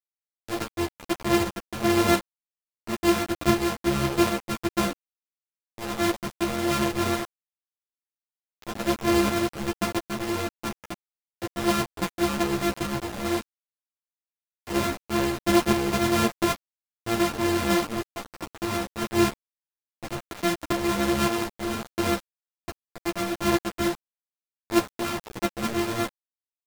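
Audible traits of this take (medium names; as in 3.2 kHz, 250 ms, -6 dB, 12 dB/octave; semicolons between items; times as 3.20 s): a buzz of ramps at a fixed pitch in blocks of 128 samples; tremolo saw up 1.4 Hz, depth 55%; a quantiser's noise floor 6-bit, dither none; a shimmering, thickened sound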